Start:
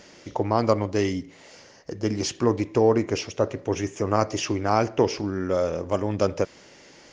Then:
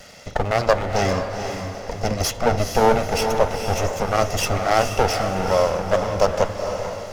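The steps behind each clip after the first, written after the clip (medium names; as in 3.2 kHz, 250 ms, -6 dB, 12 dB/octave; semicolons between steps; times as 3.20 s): comb filter that takes the minimum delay 1.5 ms; echo that smears into a reverb 455 ms, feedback 41%, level -6 dB; trim +7 dB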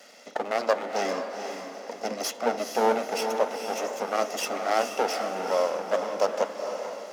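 Chebyshev high-pass 230 Hz, order 4; trim -6 dB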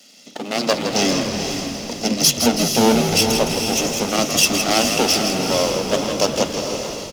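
high-order bell 940 Hz -14 dB 2.6 oct; level rider gain up to 11.5 dB; on a send: frequency-shifting echo 163 ms, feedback 50%, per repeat -62 Hz, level -7.5 dB; on the sum: trim +6 dB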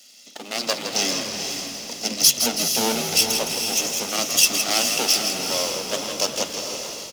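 tilt EQ +2.5 dB/octave; trim -6.5 dB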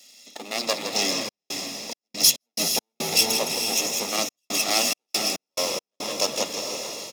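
trance gate "xxxxxx.xx.x.x." 70 bpm -60 dB; comb of notches 1.5 kHz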